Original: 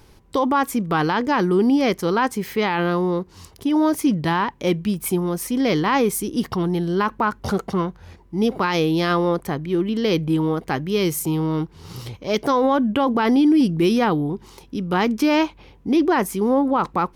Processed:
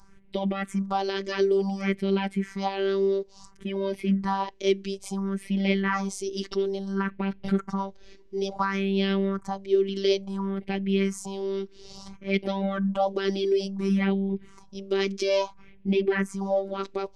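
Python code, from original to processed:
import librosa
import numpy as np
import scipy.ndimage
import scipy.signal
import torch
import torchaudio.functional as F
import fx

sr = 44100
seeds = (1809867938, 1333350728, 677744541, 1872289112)

y = scipy.signal.sosfilt(scipy.signal.butter(4, 6800.0, 'lowpass', fs=sr, output='sos'), x)
y = fx.robotise(y, sr, hz=195.0)
y = fx.phaser_stages(y, sr, stages=4, low_hz=140.0, high_hz=1200.0, hz=0.58, feedback_pct=40)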